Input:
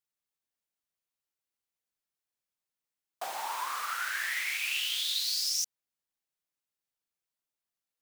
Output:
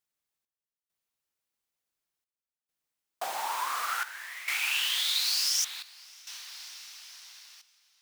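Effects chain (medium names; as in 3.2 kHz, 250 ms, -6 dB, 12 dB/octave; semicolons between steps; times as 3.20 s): echo that smears into a reverb 627 ms, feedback 54%, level -12.5 dB; trance gate "xx..xxxx" 67 bpm -12 dB; trim +3 dB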